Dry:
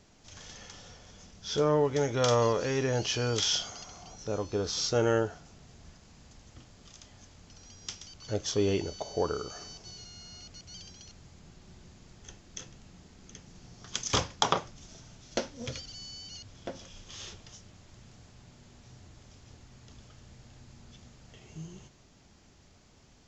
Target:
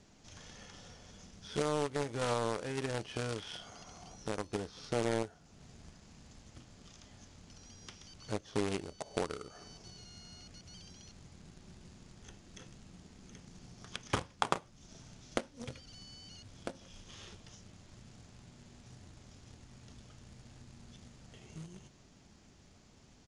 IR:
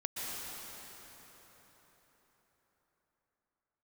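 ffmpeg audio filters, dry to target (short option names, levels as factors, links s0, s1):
-filter_complex "[0:a]acrossover=split=3000[s0][s1];[s1]acompressor=threshold=0.00316:ratio=4:attack=1:release=60[s2];[s0][s2]amix=inputs=2:normalize=0,equalizer=f=210:t=o:w=1.3:g=3.5,acompressor=threshold=0.00398:ratio=2,acrusher=bits=3:mode=log:mix=0:aa=0.000001,aeval=exprs='0.0944*(cos(1*acos(clip(val(0)/0.0944,-1,1)))-cos(1*PI/2))+0.0106*(cos(7*acos(clip(val(0)/0.0944,-1,1)))-cos(7*PI/2))':c=same,aresample=22050,aresample=44100,volume=3.35"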